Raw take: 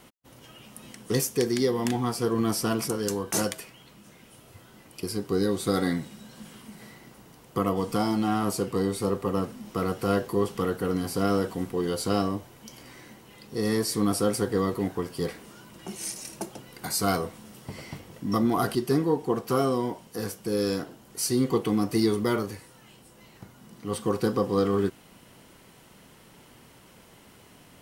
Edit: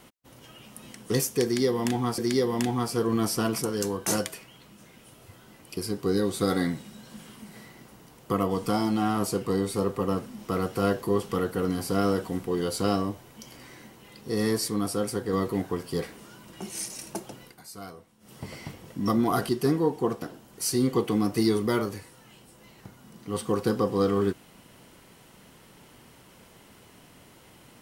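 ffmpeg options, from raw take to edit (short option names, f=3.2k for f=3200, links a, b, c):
-filter_complex "[0:a]asplit=7[a][b][c][d][e][f][g];[a]atrim=end=2.182[h];[b]atrim=start=1.438:end=13.942[i];[c]atrim=start=13.938:end=14.592,asetpts=PTS-STARTPTS,volume=-3.5dB[j];[d]atrim=start=14.588:end=16.84,asetpts=PTS-STARTPTS,afade=t=out:st=2.102:d=0.15:silence=0.149624[k];[e]atrim=start=16.84:end=17.46,asetpts=PTS-STARTPTS,volume=-16.5dB[l];[f]atrim=start=17.46:end=19.482,asetpts=PTS-STARTPTS,afade=t=in:d=0.15:silence=0.149624[m];[g]atrim=start=20.788[n];[h][i]acrossfade=d=0.004:c1=hsin:c2=hsin[o];[o][j]acrossfade=d=0.004:c1=hsin:c2=hsin[p];[k][l][m]concat=n=3:v=0:a=1[q];[p][q]acrossfade=d=0.004:c1=hsin:c2=hsin[r];[r][n]acrossfade=d=0.004:c1=hsin:c2=hsin"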